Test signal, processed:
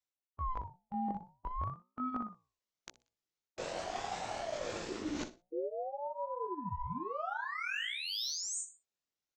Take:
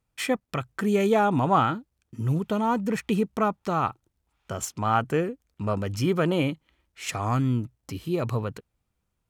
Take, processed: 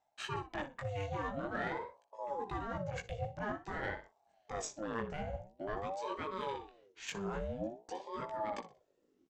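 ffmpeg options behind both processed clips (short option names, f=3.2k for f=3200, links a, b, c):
-filter_complex "[0:a]afftfilt=real='re*pow(10,7/40*sin(2*PI*(1.7*log(max(b,1)*sr/1024/100)/log(2)-(1.7)*(pts-256)/sr)))':imag='im*pow(10,7/40*sin(2*PI*(1.7*log(max(b,1)*sr/1024/100)/log(2)-(1.7)*(pts-256)/sr)))':win_size=1024:overlap=0.75,aresample=16000,aresample=44100,equalizer=f=570:w=0.37:g=-6,aecho=1:1:61|122|183:0.2|0.0619|0.0192,asplit=2[a][b];[b]adynamicsmooth=sensitivity=3:basefreq=1.5k,volume=-1.5dB[c];[a][c]amix=inputs=2:normalize=0,flanger=delay=16:depth=6.5:speed=0.37,areverse,acompressor=threshold=-39dB:ratio=6,areverse,bandreject=f=60:t=h:w=6,bandreject=f=120:t=h:w=6,bandreject=f=180:t=h:w=6,bandreject=f=240:t=h:w=6,bandreject=f=300:t=h:w=6,bandreject=f=360:t=h:w=6,bandreject=f=420:t=h:w=6,bandreject=f=480:t=h:w=6,bandreject=f=540:t=h:w=6,adynamicequalizer=threshold=0.00112:dfrequency=160:dqfactor=5.3:tfrequency=160:tqfactor=5.3:attack=5:release=100:ratio=0.375:range=2.5:mode=cutabove:tftype=bell,aeval=exprs='val(0)*sin(2*PI*530*n/s+530*0.45/0.48*sin(2*PI*0.48*n/s))':c=same,volume=5dB"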